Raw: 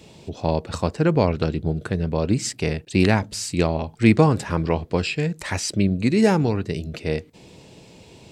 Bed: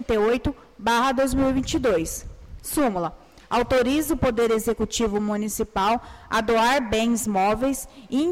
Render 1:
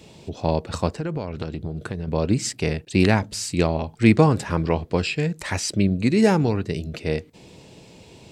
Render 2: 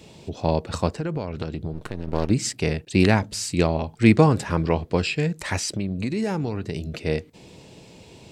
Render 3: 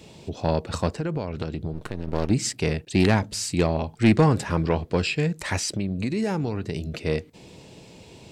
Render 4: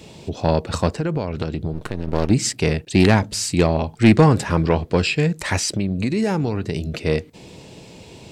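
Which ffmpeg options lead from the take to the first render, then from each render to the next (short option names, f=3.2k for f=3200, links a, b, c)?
-filter_complex "[0:a]asettb=1/sr,asplit=3[a][b][c];[a]atrim=end=0.894[d];[b]atrim=start=0.89:end=2.08,asetpts=PTS-STARTPTS,afade=t=in:d=0.004:c=qsin,afade=t=out:st=1.186:d=0.004:c=qsin,acompressor=threshold=-24dB:ratio=6:attack=3.2:release=140:knee=1:detection=peak[e];[c]atrim=start=2.076[f];[d][e]acrossfade=d=0.004:c1=hsin:c2=qsin[g];[g][f]acrossfade=d=0.004:c1=qsin:c2=hsin"
-filter_complex "[0:a]asettb=1/sr,asplit=3[a][b][c];[a]atrim=end=1.734[d];[b]atrim=start=1.73:end=2.3,asetpts=PTS-STARTPTS,afade=t=in:d=0.004:c=qsin,afade=t=out:st=0.566:d=0.004:c=qsin,aeval=exprs='max(val(0),0)':c=same[e];[c]atrim=start=2.296[f];[d][e]acrossfade=d=0.004:c1=hsin:c2=qsin[g];[g][f]acrossfade=d=0.004:c1=qsin:c2=hsin,asettb=1/sr,asplit=3[h][i][j];[h]atrim=end=5.594[k];[i]atrim=start=5.59:end=6.92,asetpts=PTS-STARTPTS,afade=t=in:d=0.004:c=qsin,afade=t=out:st=1.326:d=0.004:c=qsin,acompressor=threshold=-23dB:ratio=4:attack=3.2:release=140:knee=1:detection=peak[l];[j]atrim=start=6.916[m];[k][l]acrossfade=d=0.004:c1=hsin:c2=qsin[n];[n][m]acrossfade=d=0.004:c1=qsin:c2=hsin"
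-af "asoftclip=type=tanh:threshold=-9dB"
-af "volume=5dB"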